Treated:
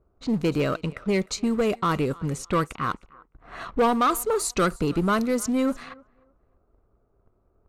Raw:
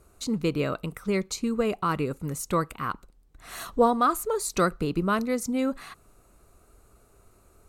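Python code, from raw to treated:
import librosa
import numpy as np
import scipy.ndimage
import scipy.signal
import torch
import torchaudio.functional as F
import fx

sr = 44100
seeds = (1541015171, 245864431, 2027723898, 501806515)

p1 = fx.leveller(x, sr, passes=2)
p2 = fx.echo_thinned(p1, sr, ms=306, feedback_pct=33, hz=470.0, wet_db=-22.0)
p3 = np.clip(p2, -10.0 ** (-20.0 / 20.0), 10.0 ** (-20.0 / 20.0))
p4 = p2 + F.gain(torch.from_numpy(p3), -12.0).numpy()
p5 = fx.env_lowpass(p4, sr, base_hz=910.0, full_db=-16.0)
y = F.gain(torch.from_numpy(p5), -5.0).numpy()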